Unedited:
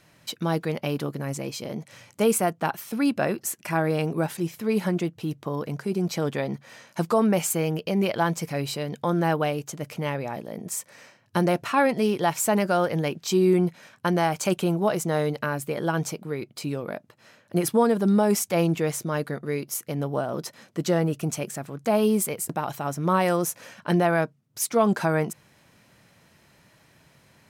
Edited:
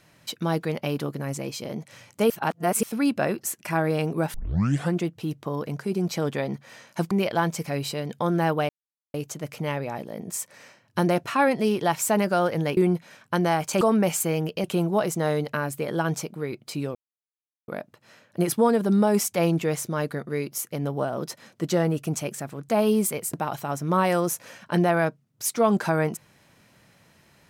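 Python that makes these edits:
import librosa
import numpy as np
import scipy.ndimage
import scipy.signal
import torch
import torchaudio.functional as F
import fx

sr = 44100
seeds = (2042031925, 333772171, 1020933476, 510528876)

y = fx.edit(x, sr, fx.reverse_span(start_s=2.3, length_s=0.53),
    fx.tape_start(start_s=4.34, length_s=0.59),
    fx.move(start_s=7.11, length_s=0.83, to_s=14.53),
    fx.insert_silence(at_s=9.52, length_s=0.45),
    fx.cut(start_s=13.15, length_s=0.34),
    fx.insert_silence(at_s=16.84, length_s=0.73), tone=tone)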